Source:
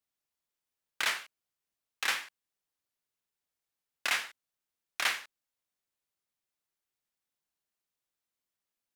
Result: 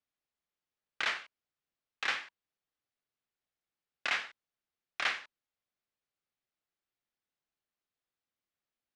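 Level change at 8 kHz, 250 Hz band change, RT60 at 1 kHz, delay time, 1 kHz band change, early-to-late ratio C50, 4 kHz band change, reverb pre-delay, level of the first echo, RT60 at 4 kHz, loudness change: −11.5 dB, 0.0 dB, no reverb audible, no echo audible, −1.5 dB, no reverb audible, −3.5 dB, no reverb audible, no echo audible, no reverb audible, −2.5 dB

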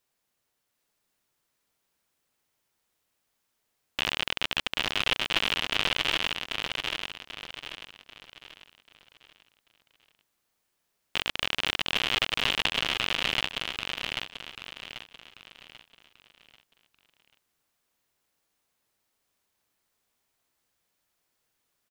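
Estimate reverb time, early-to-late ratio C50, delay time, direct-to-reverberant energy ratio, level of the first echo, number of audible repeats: no reverb audible, no reverb audible, 789 ms, no reverb audible, −4.0 dB, 4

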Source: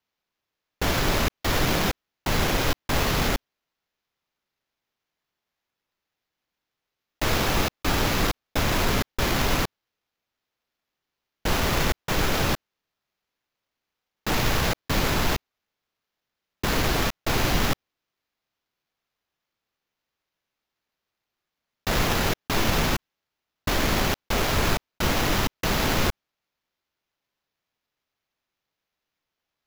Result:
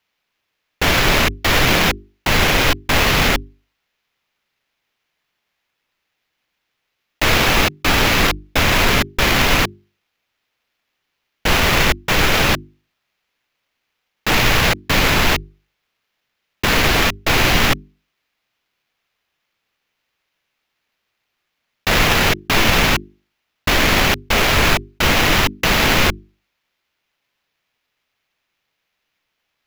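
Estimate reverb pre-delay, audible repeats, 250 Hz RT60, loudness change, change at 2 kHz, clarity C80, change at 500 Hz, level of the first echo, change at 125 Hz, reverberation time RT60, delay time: no reverb audible, no echo audible, no reverb audible, +9.5 dB, +12.0 dB, no reverb audible, +7.0 dB, no echo audible, +6.0 dB, no reverb audible, no echo audible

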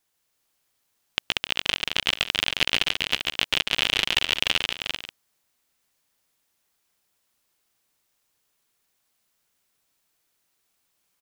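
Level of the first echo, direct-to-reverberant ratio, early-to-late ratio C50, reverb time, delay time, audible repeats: −3.5 dB, no reverb audible, no reverb audible, no reverb audible, 138 ms, 6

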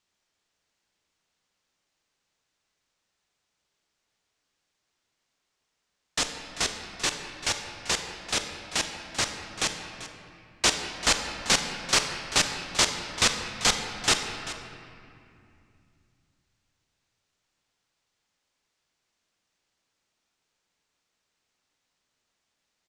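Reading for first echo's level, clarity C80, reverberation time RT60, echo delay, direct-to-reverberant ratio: −14.5 dB, 6.5 dB, 2.5 s, 390 ms, 5.0 dB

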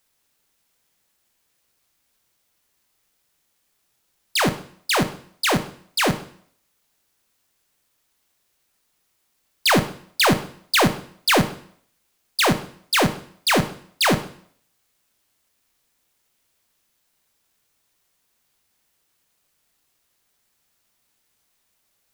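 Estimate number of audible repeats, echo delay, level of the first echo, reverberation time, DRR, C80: no echo audible, no echo audible, no echo audible, 0.60 s, 9.0 dB, 16.5 dB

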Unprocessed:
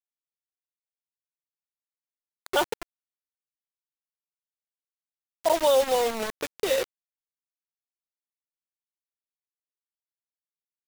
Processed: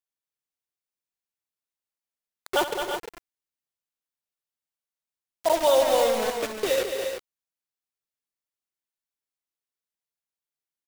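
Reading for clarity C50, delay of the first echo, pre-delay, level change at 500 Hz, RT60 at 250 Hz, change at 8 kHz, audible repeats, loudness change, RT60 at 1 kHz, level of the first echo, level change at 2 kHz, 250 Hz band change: no reverb audible, 71 ms, no reverb audible, +2.0 dB, no reverb audible, +1.5 dB, 6, +1.0 dB, no reverb audible, −12.5 dB, +1.5 dB, +1.5 dB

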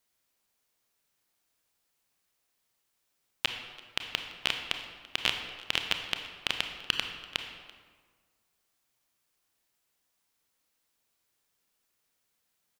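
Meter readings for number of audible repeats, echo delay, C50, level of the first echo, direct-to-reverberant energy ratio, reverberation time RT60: 1, 337 ms, 6.5 dB, −21.5 dB, 5.0 dB, 1.6 s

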